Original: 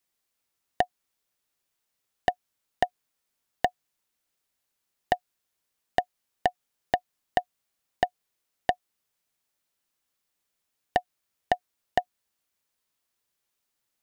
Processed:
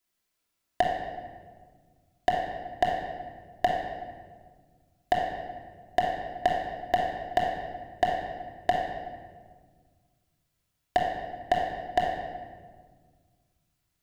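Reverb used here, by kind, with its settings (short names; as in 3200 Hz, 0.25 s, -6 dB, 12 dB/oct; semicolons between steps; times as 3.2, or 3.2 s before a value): shoebox room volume 1800 m³, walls mixed, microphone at 3 m; gain -3 dB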